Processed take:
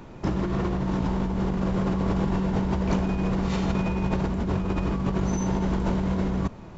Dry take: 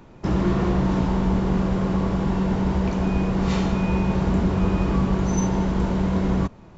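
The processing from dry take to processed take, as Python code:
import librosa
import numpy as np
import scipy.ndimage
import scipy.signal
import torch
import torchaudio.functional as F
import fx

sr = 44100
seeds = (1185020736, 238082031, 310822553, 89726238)

y = fx.over_compress(x, sr, threshold_db=-25.0, ratio=-1.0)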